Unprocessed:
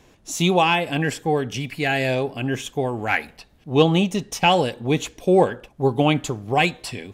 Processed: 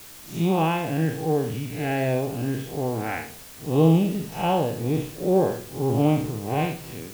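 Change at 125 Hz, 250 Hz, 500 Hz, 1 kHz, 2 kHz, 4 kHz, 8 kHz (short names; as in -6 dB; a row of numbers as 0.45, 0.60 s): +1.0, -0.5, -3.5, -5.5, -10.5, -12.0, -7.0 dB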